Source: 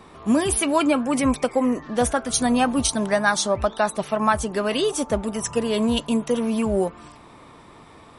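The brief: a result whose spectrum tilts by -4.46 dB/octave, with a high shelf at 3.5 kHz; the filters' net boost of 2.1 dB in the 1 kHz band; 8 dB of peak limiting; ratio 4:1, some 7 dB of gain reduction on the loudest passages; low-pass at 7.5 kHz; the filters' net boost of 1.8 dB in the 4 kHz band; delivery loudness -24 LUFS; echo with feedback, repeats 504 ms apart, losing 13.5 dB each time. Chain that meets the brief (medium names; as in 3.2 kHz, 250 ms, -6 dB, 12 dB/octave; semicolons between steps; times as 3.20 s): low-pass 7.5 kHz; peaking EQ 1 kHz +3 dB; treble shelf 3.5 kHz -7.5 dB; peaking EQ 4 kHz +7.5 dB; compression 4:1, threshold -21 dBFS; peak limiter -19 dBFS; feedback delay 504 ms, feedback 21%, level -13.5 dB; trim +4.5 dB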